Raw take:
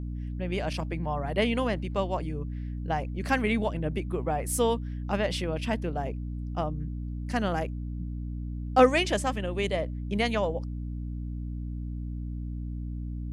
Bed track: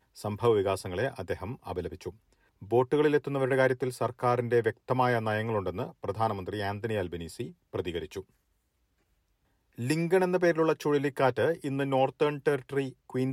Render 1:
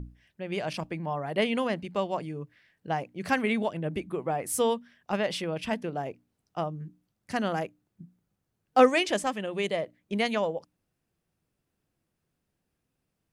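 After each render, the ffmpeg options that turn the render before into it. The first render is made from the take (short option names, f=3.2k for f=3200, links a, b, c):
-af "bandreject=f=60:t=h:w=6,bandreject=f=120:t=h:w=6,bandreject=f=180:t=h:w=6,bandreject=f=240:t=h:w=6,bandreject=f=300:t=h:w=6"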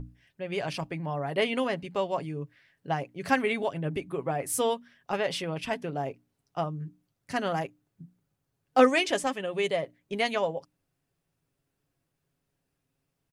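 -af "equalizer=f=220:t=o:w=0.21:g=-6,aecho=1:1:7.3:0.41"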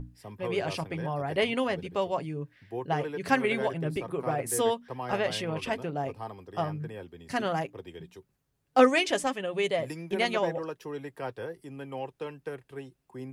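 -filter_complex "[1:a]volume=-11dB[a];[0:a][a]amix=inputs=2:normalize=0"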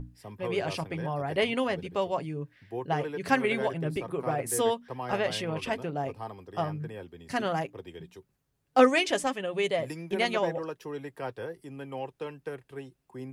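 -af anull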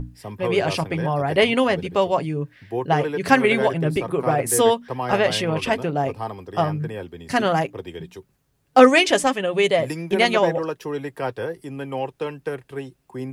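-af "volume=9.5dB,alimiter=limit=-1dB:level=0:latency=1"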